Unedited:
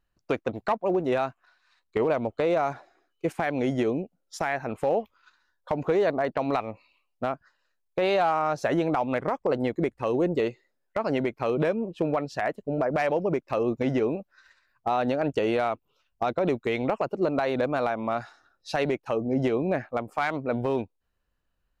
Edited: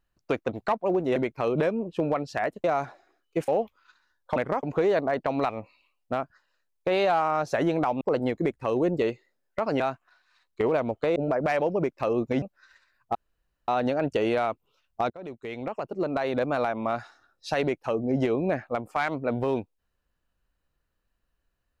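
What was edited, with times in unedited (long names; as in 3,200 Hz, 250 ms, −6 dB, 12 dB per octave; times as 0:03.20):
0:01.16–0:02.52: swap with 0:11.18–0:12.66
0:03.36–0:04.86: remove
0:09.12–0:09.39: move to 0:05.74
0:13.92–0:14.17: remove
0:14.90: splice in room tone 0.53 s
0:16.32–0:17.71: fade in, from −20 dB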